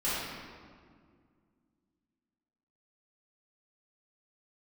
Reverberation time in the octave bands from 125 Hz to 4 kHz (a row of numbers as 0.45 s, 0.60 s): 2.7 s, 3.0 s, 2.2 s, 1.8 s, 1.5 s, 1.2 s